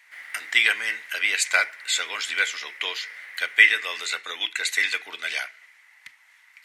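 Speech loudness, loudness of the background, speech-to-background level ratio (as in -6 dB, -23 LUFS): -23.0 LUFS, -41.0 LUFS, 18.0 dB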